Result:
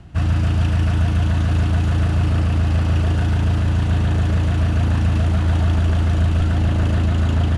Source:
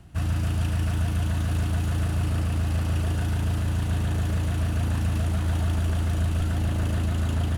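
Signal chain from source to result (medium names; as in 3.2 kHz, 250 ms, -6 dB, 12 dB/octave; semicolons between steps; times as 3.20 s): distance through air 81 m; trim +7.5 dB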